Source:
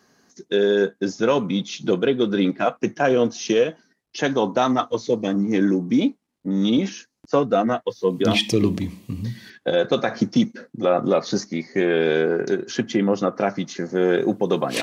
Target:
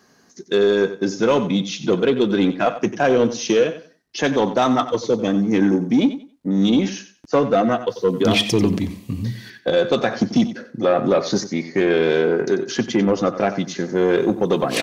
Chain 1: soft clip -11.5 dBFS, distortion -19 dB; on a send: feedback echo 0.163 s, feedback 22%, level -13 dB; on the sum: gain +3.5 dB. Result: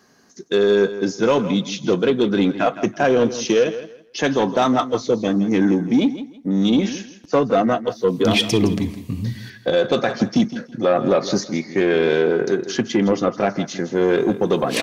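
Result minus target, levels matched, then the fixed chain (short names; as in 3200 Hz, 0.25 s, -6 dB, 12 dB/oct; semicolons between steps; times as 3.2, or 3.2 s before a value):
echo 71 ms late
soft clip -11.5 dBFS, distortion -19 dB; on a send: feedback echo 92 ms, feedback 22%, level -13 dB; on the sum: gain +3.5 dB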